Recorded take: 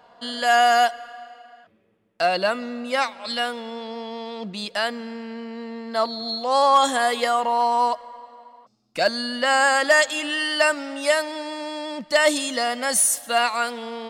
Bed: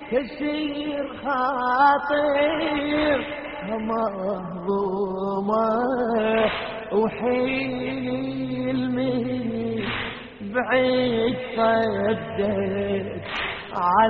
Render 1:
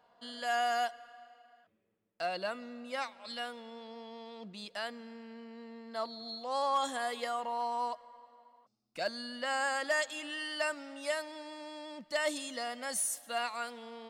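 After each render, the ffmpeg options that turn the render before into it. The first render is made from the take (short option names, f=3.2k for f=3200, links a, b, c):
-af "volume=-14.5dB"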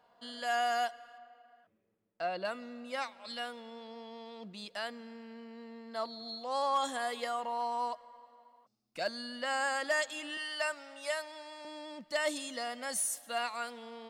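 -filter_complex "[0:a]asettb=1/sr,asplit=3[a][b][c];[a]atrim=end=1.184[d];[b]atrim=start=1.18:end=2.45,asetpts=PTS-STARTPTS,afade=t=in:d=0.004:c=qsin,afade=t=out:st=1.266:d=0.004:c=qsin,aemphasis=mode=reproduction:type=75fm[e];[c]atrim=start=2.446[f];[d][e]acrossfade=d=0.004:c1=hsin:c2=qsin[g];[g][f]acrossfade=d=0.004:c1=qsin:c2=hsin,asettb=1/sr,asplit=3[h][i][j];[h]atrim=end=10.374[k];[i]atrim=start=10.37:end=11.65,asetpts=PTS-STARTPTS,afade=t=in:d=0.004:c=qsin,afade=t=out:st=1.276:d=0.004:c=qsin,highpass=490[l];[j]atrim=start=11.646[m];[k][l]acrossfade=d=0.004:c1=hsin:c2=qsin[n];[n][m]acrossfade=d=0.004:c1=qsin:c2=hsin"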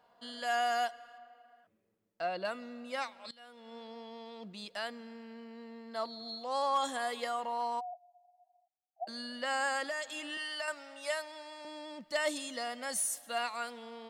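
-filter_complex "[0:a]asplit=3[a][b][c];[a]afade=t=out:st=7.79:d=0.02[d];[b]asuperpass=centerf=730:order=8:qfactor=5.4,afade=t=in:st=7.79:d=0.02,afade=t=out:st=9.07:d=0.02[e];[c]afade=t=in:st=9.07:d=0.02[f];[d][e][f]amix=inputs=3:normalize=0,asettb=1/sr,asplit=3[g][h][i];[g]atrim=end=9.884[j];[h]atrim=start=9.88:end=10.68,asetpts=PTS-STARTPTS,afade=t=in:d=0.004:c=qsin,afade=t=out:st=0.796:d=0.004:c=qsin,acompressor=threshold=-33dB:ratio=6:attack=3.2:release=140:knee=1:detection=peak[k];[i]atrim=start=10.676[l];[j][k]acrossfade=d=0.004:c1=hsin:c2=qsin[m];[m][l]acrossfade=d=0.004:c1=qsin:c2=hsin,asplit=2[n][o];[n]atrim=end=3.31,asetpts=PTS-STARTPTS,afade=t=out:st=3.306:d=0.004:c=hsin:silence=0.105925[p];[o]atrim=start=3.31,asetpts=PTS-STARTPTS,afade=t=in:d=0.44:c=qua:silence=0.105925[q];[p][q]concat=n=2:v=0:a=1"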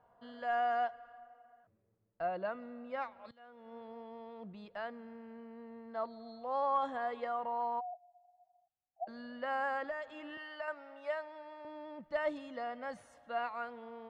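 -af "lowpass=1.4k,lowshelf=f=160:t=q:w=1.5:g=8"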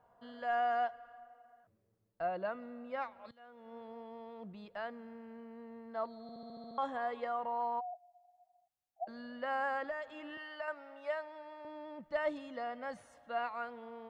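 -filter_complex "[0:a]asplit=9[a][b][c][d][e][f][g][h][i];[a]atrim=end=6.292[j];[b]atrim=start=6.218:end=6.292[k];[c]atrim=start=6.218:end=6.292[l];[d]atrim=start=6.218:end=6.292[m];[e]atrim=start=6.218:end=6.292[n];[f]atrim=start=6.218:end=6.292[o];[g]atrim=start=6.218:end=6.292[p];[h]atrim=start=6.218:end=6.292[q];[i]atrim=start=6.778[r];[j][k]acrossfade=d=0.004:c1=hsin:c2=hsin[s];[s][l]acrossfade=d=0.004:c1=hsin:c2=hsin[t];[t][m]acrossfade=d=0.004:c1=hsin:c2=hsin[u];[u][n]acrossfade=d=0.004:c1=hsin:c2=hsin[v];[v][o]acrossfade=d=0.004:c1=hsin:c2=hsin[w];[w][p]acrossfade=d=0.004:c1=hsin:c2=hsin[x];[x][q]acrossfade=d=0.004:c1=hsin:c2=hsin[y];[y][r]acrossfade=d=0.004:c1=hsin:c2=hsin"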